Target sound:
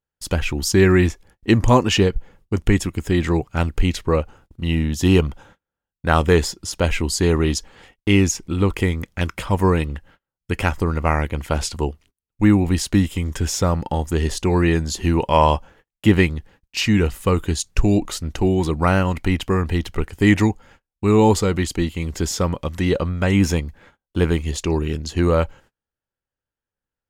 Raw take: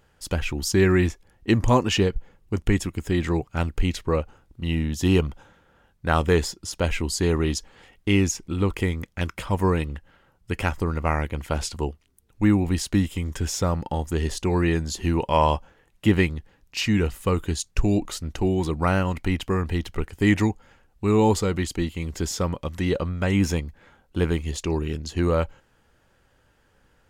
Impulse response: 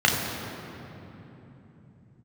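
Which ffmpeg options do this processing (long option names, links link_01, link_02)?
-af "agate=range=-33dB:threshold=-51dB:ratio=16:detection=peak,volume=4.5dB"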